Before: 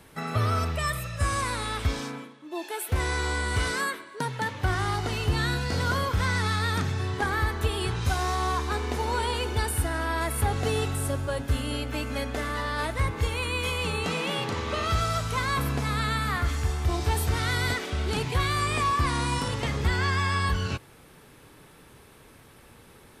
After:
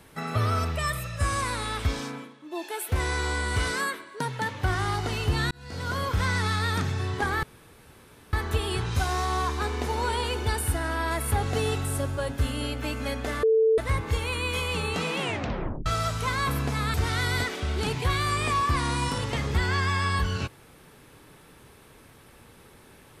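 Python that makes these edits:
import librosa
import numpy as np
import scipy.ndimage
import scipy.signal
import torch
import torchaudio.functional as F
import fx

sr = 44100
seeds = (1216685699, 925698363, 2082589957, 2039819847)

y = fx.edit(x, sr, fx.fade_in_span(start_s=5.51, length_s=0.63),
    fx.insert_room_tone(at_s=7.43, length_s=0.9),
    fx.bleep(start_s=12.53, length_s=0.35, hz=444.0, db=-17.0),
    fx.tape_stop(start_s=14.28, length_s=0.68),
    fx.cut(start_s=16.04, length_s=1.2), tone=tone)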